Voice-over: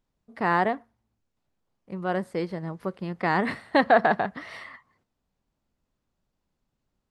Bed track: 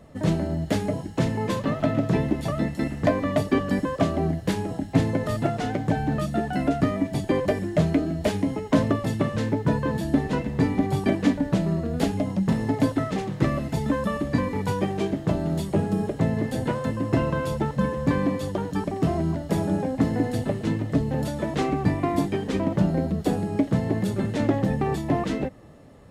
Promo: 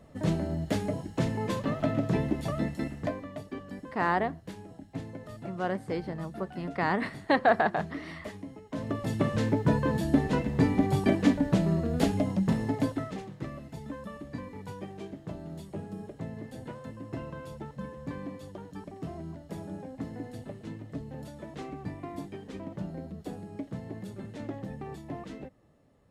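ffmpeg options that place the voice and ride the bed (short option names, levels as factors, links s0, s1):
-filter_complex "[0:a]adelay=3550,volume=0.631[s0];[1:a]volume=3.35,afade=t=out:st=2.68:d=0.61:silence=0.237137,afade=t=in:st=8.74:d=0.56:silence=0.16788,afade=t=out:st=12.22:d=1.17:silence=0.211349[s1];[s0][s1]amix=inputs=2:normalize=0"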